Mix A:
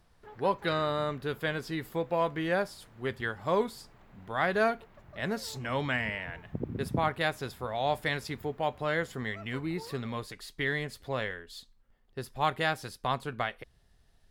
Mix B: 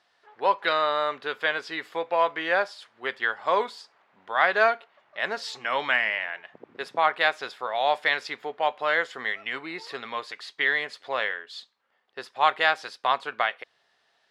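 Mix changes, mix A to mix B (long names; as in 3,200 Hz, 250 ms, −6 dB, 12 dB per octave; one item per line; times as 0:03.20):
speech +9.0 dB
master: add band-pass filter 700–4,300 Hz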